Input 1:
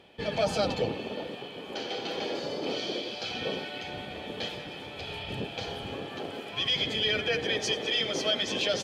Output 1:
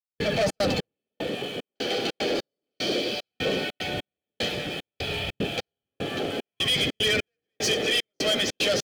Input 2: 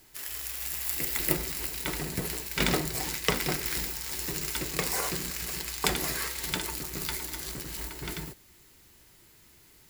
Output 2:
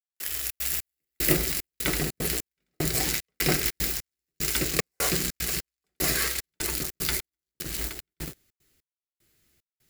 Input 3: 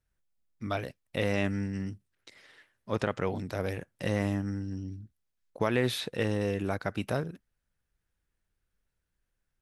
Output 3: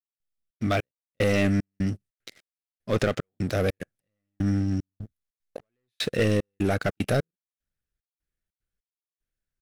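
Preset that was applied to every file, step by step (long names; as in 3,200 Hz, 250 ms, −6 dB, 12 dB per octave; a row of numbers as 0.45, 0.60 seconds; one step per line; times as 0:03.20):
dynamic equaliser 3,400 Hz, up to −4 dB, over −44 dBFS, Q 6.8
leveller curve on the samples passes 3
gate pattern "..xxx.xx....xxxx" 150 BPM −60 dB
parametric band 950 Hz −11 dB 0.37 octaves
loudness normalisation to −27 LKFS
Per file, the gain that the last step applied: −2.0, −4.5, −0.5 decibels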